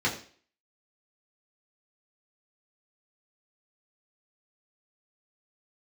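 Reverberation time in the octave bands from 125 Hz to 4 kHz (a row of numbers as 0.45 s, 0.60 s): 0.40 s, 0.45 s, 0.45 s, 0.45 s, 0.45 s, 0.45 s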